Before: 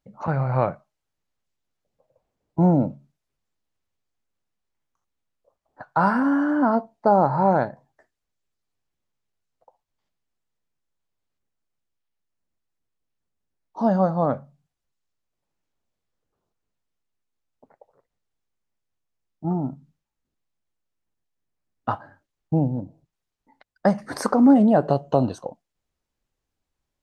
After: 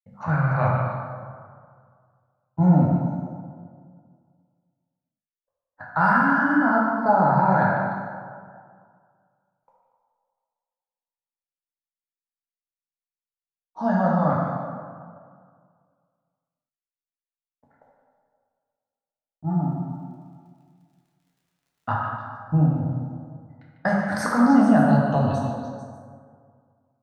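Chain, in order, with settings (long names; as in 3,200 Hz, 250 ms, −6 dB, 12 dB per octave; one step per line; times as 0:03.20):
downward expander −51 dBFS
graphic EQ with 15 bands 100 Hz +5 dB, 400 Hz −11 dB, 1,600 Hz +8 dB
0:19.57–0:21.90: surface crackle 62 per second −54 dBFS
echo through a band-pass that steps 148 ms, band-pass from 2,700 Hz, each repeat 0.7 octaves, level −5 dB
dense smooth reverb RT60 2 s, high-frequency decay 0.4×, DRR −4 dB
level −4.5 dB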